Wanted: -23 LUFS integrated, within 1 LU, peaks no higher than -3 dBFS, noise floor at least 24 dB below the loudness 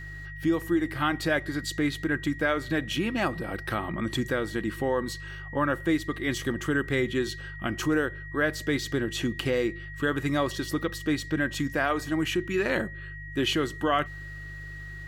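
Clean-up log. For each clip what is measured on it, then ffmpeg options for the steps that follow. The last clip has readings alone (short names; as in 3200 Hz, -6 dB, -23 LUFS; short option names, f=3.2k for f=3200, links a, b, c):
hum 50 Hz; harmonics up to 150 Hz; hum level -40 dBFS; steady tone 1900 Hz; tone level -41 dBFS; loudness -28.5 LUFS; peak -12.0 dBFS; loudness target -23.0 LUFS
-> -af "bandreject=f=50:t=h:w=4,bandreject=f=100:t=h:w=4,bandreject=f=150:t=h:w=4"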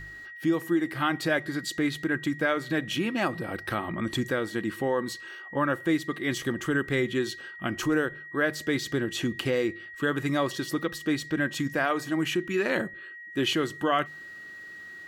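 hum none; steady tone 1900 Hz; tone level -41 dBFS
-> -af "bandreject=f=1.9k:w=30"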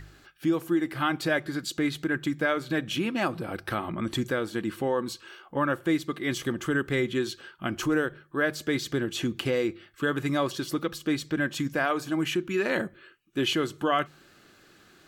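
steady tone none; loudness -29.0 LUFS; peak -13.0 dBFS; loudness target -23.0 LUFS
-> -af "volume=6dB"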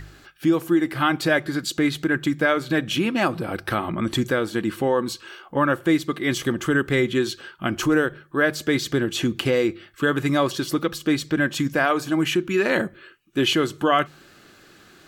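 loudness -23.0 LUFS; peak -7.0 dBFS; noise floor -52 dBFS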